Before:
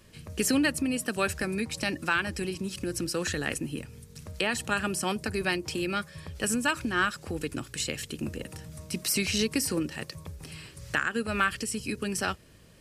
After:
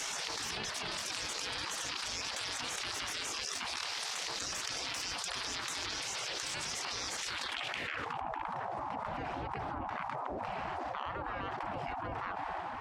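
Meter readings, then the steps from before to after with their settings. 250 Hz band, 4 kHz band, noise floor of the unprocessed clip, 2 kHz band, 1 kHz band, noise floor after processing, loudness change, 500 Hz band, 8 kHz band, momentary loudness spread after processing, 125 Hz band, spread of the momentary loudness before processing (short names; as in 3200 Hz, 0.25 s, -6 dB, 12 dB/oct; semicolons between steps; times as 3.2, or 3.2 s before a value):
-18.5 dB, -1.5 dB, -52 dBFS, -9.0 dB, -2.0 dB, -41 dBFS, -7.0 dB, -10.5 dB, -5.0 dB, 3 LU, -12.0 dB, 14 LU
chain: transient shaper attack -8 dB, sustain +3 dB; full-wave rectifier; low-pass sweep 4600 Hz -> 510 Hz, 7.28–8.23; spectral gate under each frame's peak -30 dB weak; fast leveller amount 100%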